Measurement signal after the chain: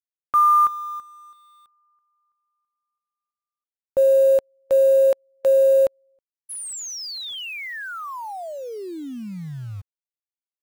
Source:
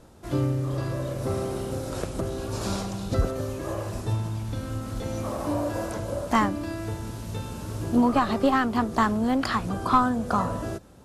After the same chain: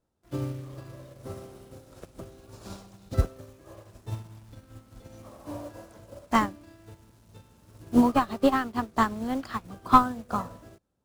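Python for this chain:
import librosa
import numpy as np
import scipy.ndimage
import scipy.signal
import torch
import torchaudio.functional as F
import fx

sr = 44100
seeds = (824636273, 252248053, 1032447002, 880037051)

p1 = fx.quant_dither(x, sr, seeds[0], bits=6, dither='none')
p2 = x + (p1 * 10.0 ** (-3.0 / 20.0))
y = fx.upward_expand(p2, sr, threshold_db=-29.0, expansion=2.5)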